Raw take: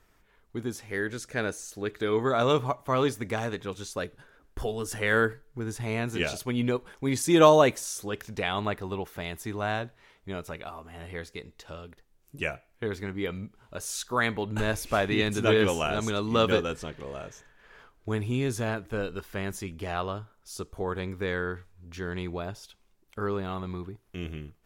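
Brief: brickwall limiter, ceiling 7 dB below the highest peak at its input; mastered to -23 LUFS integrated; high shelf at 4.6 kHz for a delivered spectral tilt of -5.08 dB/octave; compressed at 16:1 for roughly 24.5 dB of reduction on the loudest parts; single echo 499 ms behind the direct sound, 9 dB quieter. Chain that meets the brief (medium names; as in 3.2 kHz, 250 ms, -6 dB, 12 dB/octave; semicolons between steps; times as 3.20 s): treble shelf 4.6 kHz -7 dB; compression 16:1, threshold -37 dBFS; peak limiter -32 dBFS; delay 499 ms -9 dB; trim +20.5 dB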